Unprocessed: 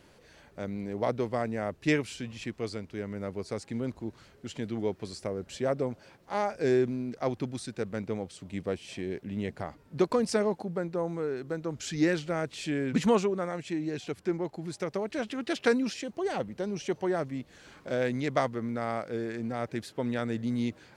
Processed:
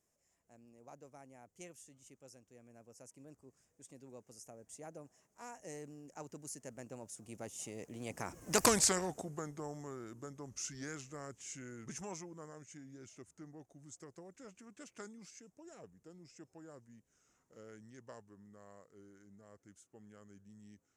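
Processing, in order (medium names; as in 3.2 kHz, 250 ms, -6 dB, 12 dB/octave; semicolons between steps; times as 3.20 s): Doppler pass-by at 8.67 s, 50 m/s, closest 2.7 m; resonant high shelf 5.2 kHz +10 dB, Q 3; spectrum-flattening compressor 2:1; trim +3 dB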